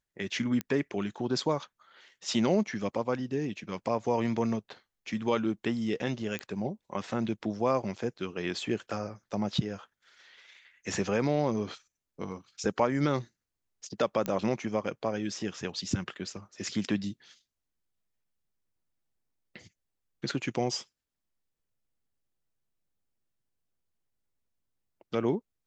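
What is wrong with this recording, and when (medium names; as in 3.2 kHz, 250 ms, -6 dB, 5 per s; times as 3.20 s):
0.61 s: pop -17 dBFS
6.39 s: pop -21 dBFS
14.26 s: pop -16 dBFS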